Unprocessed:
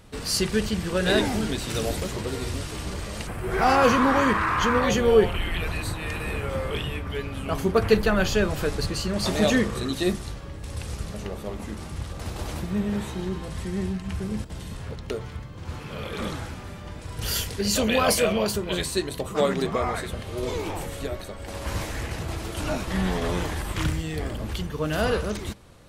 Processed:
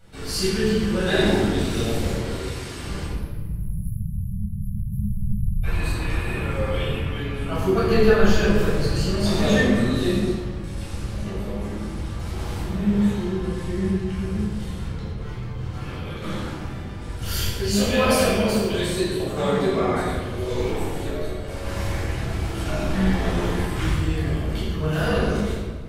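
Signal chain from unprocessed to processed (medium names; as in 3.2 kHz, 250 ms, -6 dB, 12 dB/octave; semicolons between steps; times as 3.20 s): 2.15–2.78 s: bass shelf 350 Hz -11 dB; 3.05–5.64 s: spectral selection erased 210–10000 Hz; 14.54–16.22 s: compressor with a negative ratio -35 dBFS, ratio -0.5; flange 2 Hz, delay 1.9 ms, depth 1.2 ms, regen +77%; reverberation RT60 1.5 s, pre-delay 11 ms, DRR -9.5 dB; trim -6 dB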